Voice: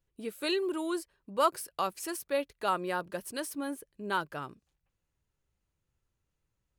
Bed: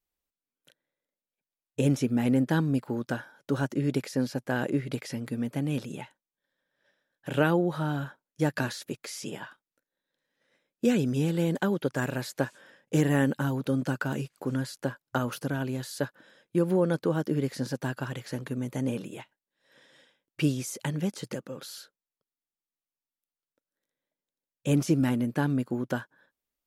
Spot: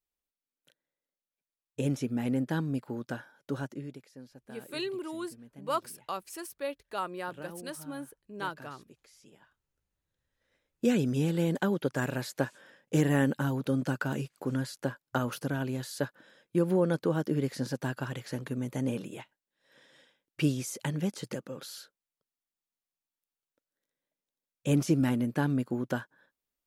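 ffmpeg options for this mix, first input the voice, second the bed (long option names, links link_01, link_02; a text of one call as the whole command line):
ffmpeg -i stem1.wav -i stem2.wav -filter_complex "[0:a]adelay=4300,volume=-4.5dB[link_01];[1:a]volume=14dB,afade=type=out:start_time=3.5:duration=0.49:silence=0.16788,afade=type=in:start_time=9.65:duration=1.3:silence=0.105925[link_02];[link_01][link_02]amix=inputs=2:normalize=0" out.wav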